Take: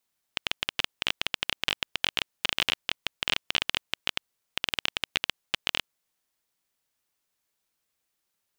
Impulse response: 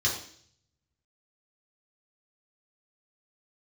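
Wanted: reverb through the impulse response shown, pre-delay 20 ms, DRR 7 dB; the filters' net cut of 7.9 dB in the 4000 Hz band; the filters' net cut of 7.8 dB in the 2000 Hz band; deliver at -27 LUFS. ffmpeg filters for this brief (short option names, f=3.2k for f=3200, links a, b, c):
-filter_complex "[0:a]equalizer=f=2k:t=o:g=-7.5,equalizer=f=4k:t=o:g=-7.5,asplit=2[a][b];[1:a]atrim=start_sample=2205,adelay=20[c];[b][c]afir=irnorm=-1:irlink=0,volume=-16dB[d];[a][d]amix=inputs=2:normalize=0,volume=9dB"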